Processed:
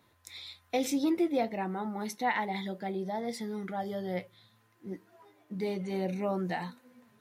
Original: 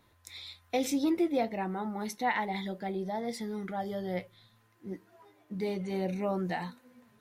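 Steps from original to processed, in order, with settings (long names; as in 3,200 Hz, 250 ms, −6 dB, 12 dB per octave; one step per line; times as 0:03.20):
high-pass filter 94 Hz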